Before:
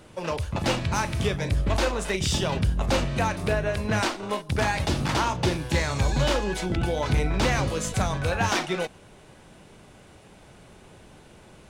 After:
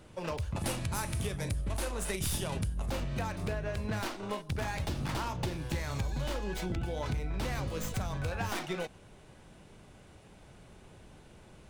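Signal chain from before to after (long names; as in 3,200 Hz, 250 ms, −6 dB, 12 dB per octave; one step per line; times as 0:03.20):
stylus tracing distortion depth 0.089 ms
low-shelf EQ 130 Hz +6 dB
downward compressor, threshold −24 dBFS, peak gain reduction 10 dB
0:00.55–0:02.90: parametric band 10,000 Hz +14.5 dB 0.73 octaves
level −6.5 dB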